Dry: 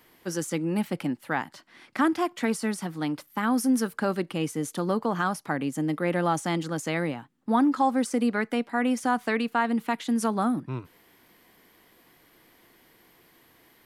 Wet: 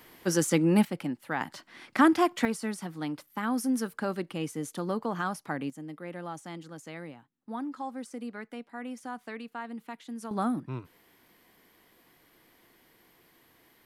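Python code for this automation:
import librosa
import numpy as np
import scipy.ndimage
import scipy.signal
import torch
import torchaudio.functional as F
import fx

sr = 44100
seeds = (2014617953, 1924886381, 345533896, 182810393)

y = fx.gain(x, sr, db=fx.steps((0.0, 4.5), (0.85, -4.0), (1.41, 2.5), (2.45, -5.0), (5.7, -14.0), (10.31, -3.5)))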